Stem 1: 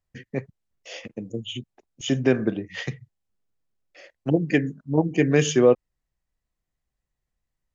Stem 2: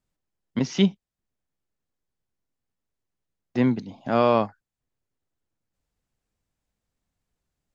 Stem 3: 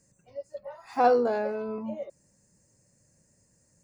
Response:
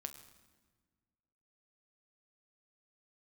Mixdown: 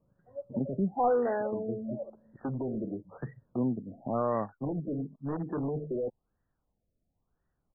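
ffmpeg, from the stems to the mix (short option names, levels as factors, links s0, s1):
-filter_complex "[0:a]highpass=120,alimiter=limit=0.188:level=0:latency=1:release=77,volume=16.8,asoftclip=hard,volume=0.0596,adelay=350,volume=0.596[s0];[1:a]acompressor=threshold=0.00631:ratio=1.5,volume=1.26[s1];[2:a]volume=0.596,asplit=2[s2][s3];[s3]volume=0.376[s4];[3:a]atrim=start_sample=2205[s5];[s4][s5]afir=irnorm=-1:irlink=0[s6];[s0][s1][s2][s6]amix=inputs=4:normalize=0,highshelf=f=3000:g=10,asoftclip=type=tanh:threshold=0.106,afftfilt=real='re*lt(b*sr/1024,670*pow(2000/670,0.5+0.5*sin(2*PI*0.97*pts/sr)))':imag='im*lt(b*sr/1024,670*pow(2000/670,0.5+0.5*sin(2*PI*0.97*pts/sr)))':win_size=1024:overlap=0.75"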